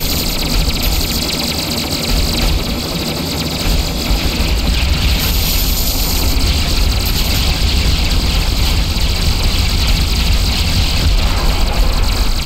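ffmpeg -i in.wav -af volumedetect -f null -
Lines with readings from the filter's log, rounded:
mean_volume: -13.6 dB
max_volume: -2.9 dB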